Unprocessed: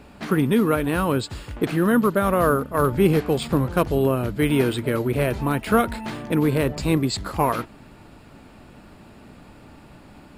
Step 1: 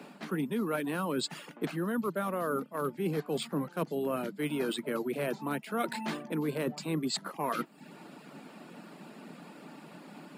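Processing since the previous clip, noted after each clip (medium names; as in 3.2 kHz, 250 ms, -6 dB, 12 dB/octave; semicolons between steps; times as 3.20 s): reverb removal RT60 0.52 s; steep high-pass 150 Hz 72 dB/octave; reverse; compression 6:1, threshold -30 dBFS, peak gain reduction 16.5 dB; reverse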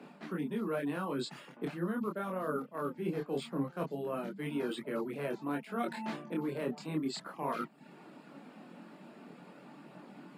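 treble shelf 3.9 kHz -9 dB; chorus voices 2, 0.2 Hz, delay 25 ms, depth 4.2 ms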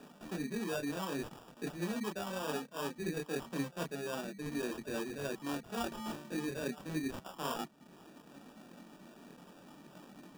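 sample-and-hold 21×; trim -2.5 dB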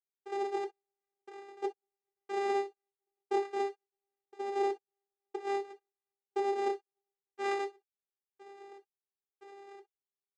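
trance gate "..xxx..." 118 bpm -60 dB; vocoder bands 4, saw 398 Hz; reverberation, pre-delay 3 ms, DRR 4.5 dB; trim +6 dB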